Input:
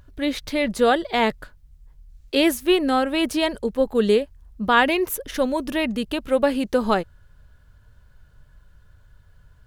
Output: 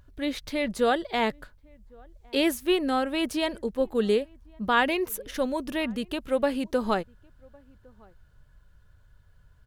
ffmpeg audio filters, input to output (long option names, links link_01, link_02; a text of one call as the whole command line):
ffmpeg -i in.wav -filter_complex "[0:a]asplit=2[link_01][link_02];[link_02]adelay=1108,volume=-28dB,highshelf=frequency=4000:gain=-24.9[link_03];[link_01][link_03]amix=inputs=2:normalize=0,volume=-5.5dB" out.wav